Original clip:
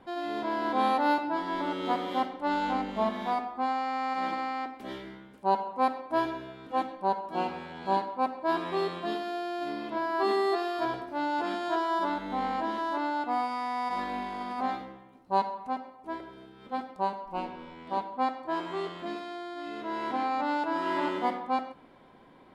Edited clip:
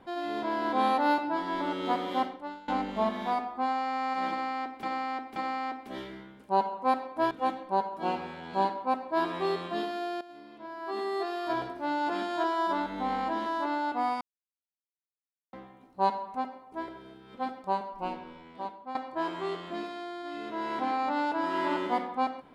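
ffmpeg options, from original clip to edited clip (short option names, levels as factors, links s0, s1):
-filter_complex "[0:a]asplit=9[s0][s1][s2][s3][s4][s5][s6][s7][s8];[s0]atrim=end=2.68,asetpts=PTS-STARTPTS,afade=t=out:st=2.28:d=0.4:c=qua:silence=0.0841395[s9];[s1]atrim=start=2.68:end=4.832,asetpts=PTS-STARTPTS,afade=t=in:d=0.004:c=hsin:silence=0.0841395[s10];[s2]atrim=start=4.298:end=4.832[s11];[s3]atrim=start=4.298:end=6.252[s12];[s4]atrim=start=6.628:end=9.53,asetpts=PTS-STARTPTS,afade=t=out:st=2.898:d=0.004:c=hsin:silence=0.177828[s13];[s5]atrim=start=9.53:end=13.53,asetpts=PTS-STARTPTS,afade=t=in:d=1.37:c=qua:silence=0.177828,afade=t=out:st=3.996:d=0.004:c=hsin[s14];[s6]atrim=start=13.53:end=14.85,asetpts=PTS-STARTPTS,volume=0[s15];[s7]atrim=start=14.85:end=18.27,asetpts=PTS-STARTPTS,afade=t=in:d=0.004:c=hsin,afade=t=out:st=2.49:d=0.93:silence=0.237137[s16];[s8]atrim=start=18.27,asetpts=PTS-STARTPTS,afade=t=in:d=0.004:c=hsin:silence=0.237137[s17];[s9][s10]concat=n=2:v=0:a=1[s18];[s18][s11]acrossfade=d=0.004:c1=hsin:c2=hsin[s19];[s19][s12]acrossfade=d=0.004:c1=hsin:c2=hsin[s20];[s13][s14][s15][s16][s17]concat=n=5:v=0:a=1[s21];[s20][s21]acrossfade=d=0.004:c1=hsin:c2=hsin"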